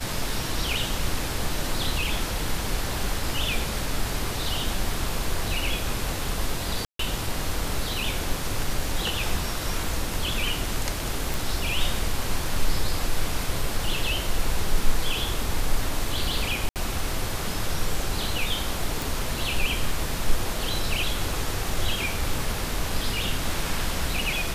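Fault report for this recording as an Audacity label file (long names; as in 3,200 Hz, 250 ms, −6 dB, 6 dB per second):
6.850000	6.990000	drop-out 143 ms
11.340000	11.340000	click
16.690000	16.760000	drop-out 68 ms
19.020000	19.020000	click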